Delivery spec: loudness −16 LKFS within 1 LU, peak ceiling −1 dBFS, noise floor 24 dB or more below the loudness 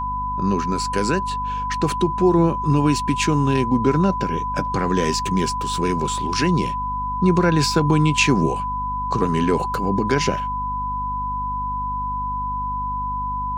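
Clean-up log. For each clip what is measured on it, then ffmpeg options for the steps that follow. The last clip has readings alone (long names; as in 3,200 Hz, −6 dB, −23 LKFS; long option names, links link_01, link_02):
mains hum 50 Hz; hum harmonics up to 250 Hz; level of the hum −29 dBFS; interfering tone 1,000 Hz; level of the tone −23 dBFS; integrated loudness −21.0 LKFS; sample peak −5.0 dBFS; target loudness −16.0 LKFS
→ -af "bandreject=frequency=50:width_type=h:width=4,bandreject=frequency=100:width_type=h:width=4,bandreject=frequency=150:width_type=h:width=4,bandreject=frequency=200:width_type=h:width=4,bandreject=frequency=250:width_type=h:width=4"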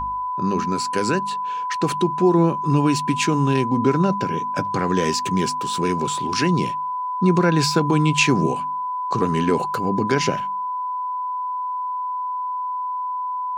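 mains hum none found; interfering tone 1,000 Hz; level of the tone −23 dBFS
→ -af "bandreject=frequency=1000:width=30"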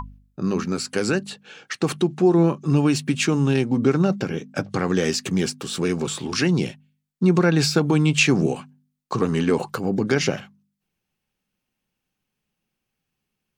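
interfering tone none found; integrated loudness −21.5 LKFS; sample peak −5.0 dBFS; target loudness −16.0 LKFS
→ -af "volume=5.5dB,alimiter=limit=-1dB:level=0:latency=1"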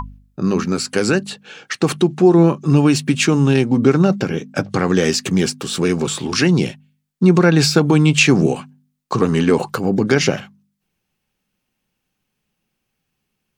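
integrated loudness −16.0 LKFS; sample peak −1.0 dBFS; background noise floor −75 dBFS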